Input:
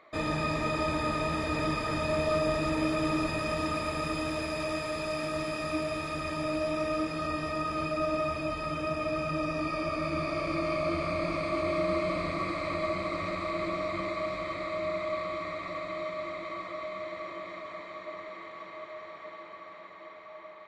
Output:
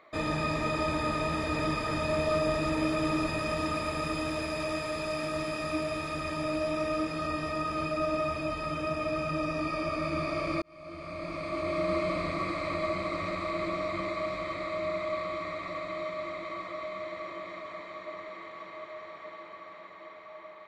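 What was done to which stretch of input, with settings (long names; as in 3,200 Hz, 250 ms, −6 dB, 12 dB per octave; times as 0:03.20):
0:10.62–0:11.95: fade in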